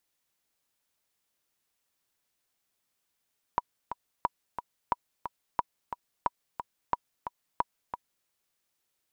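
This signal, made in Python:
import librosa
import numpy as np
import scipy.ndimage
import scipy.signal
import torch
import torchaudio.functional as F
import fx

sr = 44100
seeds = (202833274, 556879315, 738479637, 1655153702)

y = fx.click_track(sr, bpm=179, beats=2, bars=7, hz=969.0, accent_db=9.0, level_db=-12.0)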